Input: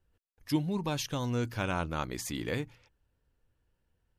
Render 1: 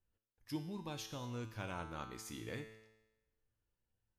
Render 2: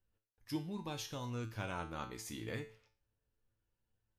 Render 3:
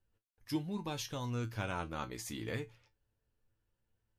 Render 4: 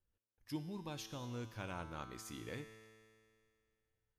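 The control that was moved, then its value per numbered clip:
tuned comb filter, decay: 1, 0.4, 0.16, 2.2 seconds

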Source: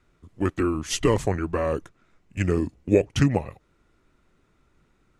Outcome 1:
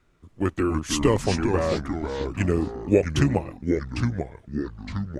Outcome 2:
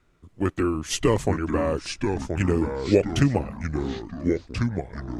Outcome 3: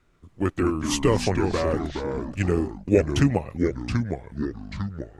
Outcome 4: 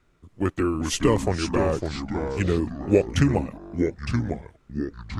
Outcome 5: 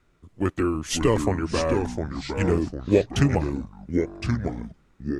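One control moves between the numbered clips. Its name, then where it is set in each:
delay with pitch and tempo change per echo, delay time: 204, 787, 126, 314, 467 milliseconds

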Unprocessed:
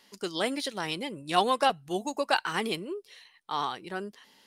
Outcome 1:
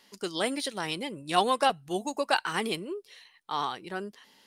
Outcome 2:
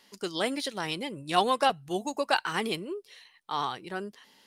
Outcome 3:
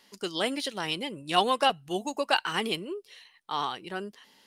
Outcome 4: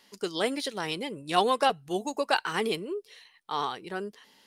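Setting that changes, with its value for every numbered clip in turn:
dynamic equaliser, frequency: 9,000, 130, 2,900, 440 Hertz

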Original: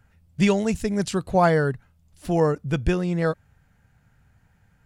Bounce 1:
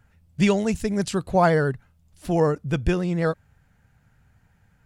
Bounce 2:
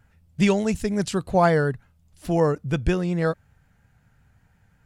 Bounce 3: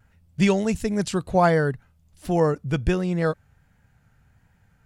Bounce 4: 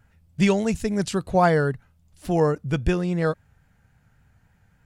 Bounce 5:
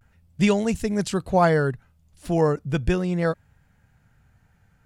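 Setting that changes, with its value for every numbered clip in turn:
pitch vibrato, speed: 14, 5.5, 1.4, 3.6, 0.37 Hertz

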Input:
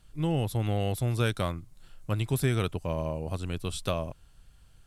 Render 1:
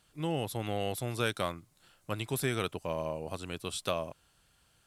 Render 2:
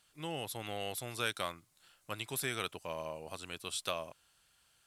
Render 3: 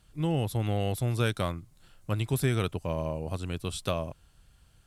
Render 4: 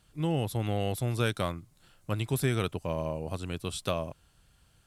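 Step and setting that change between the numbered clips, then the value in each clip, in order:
high-pass filter, corner frequency: 360, 1,300, 42, 110 Hertz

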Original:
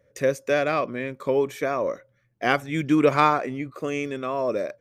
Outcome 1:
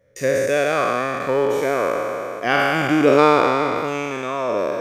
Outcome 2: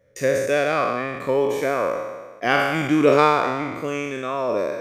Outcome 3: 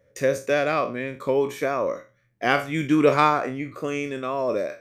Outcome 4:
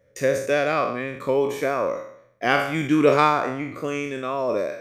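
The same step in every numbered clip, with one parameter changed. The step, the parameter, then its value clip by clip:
peak hold with a decay on every bin, RT60: 3.09, 1.36, 0.31, 0.66 seconds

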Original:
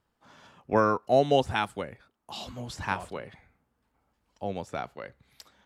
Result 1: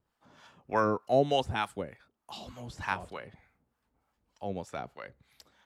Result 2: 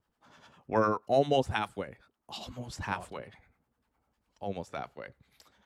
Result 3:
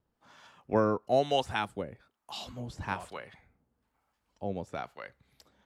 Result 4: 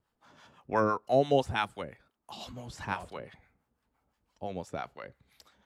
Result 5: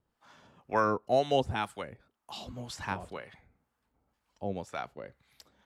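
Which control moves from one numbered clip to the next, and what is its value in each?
two-band tremolo in antiphase, speed: 3.3, 10, 1.1, 5.9, 2 Hertz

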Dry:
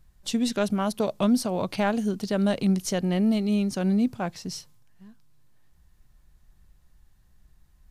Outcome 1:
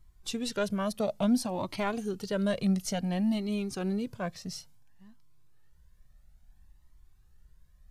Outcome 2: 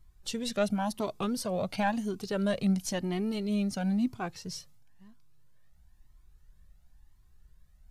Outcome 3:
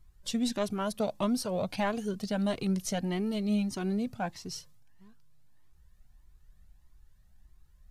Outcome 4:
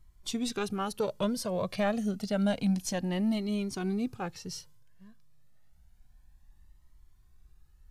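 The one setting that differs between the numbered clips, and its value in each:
flanger whose copies keep moving one way, speed: 0.58, 0.98, 1.6, 0.29 Hertz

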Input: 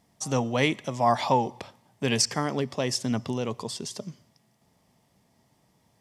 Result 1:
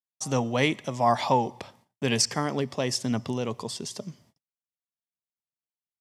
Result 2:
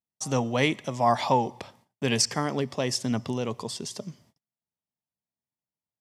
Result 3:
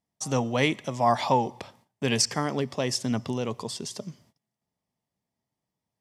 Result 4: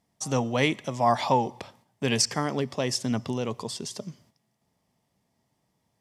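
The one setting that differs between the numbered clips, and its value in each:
noise gate, range: −48, −34, −20, −8 decibels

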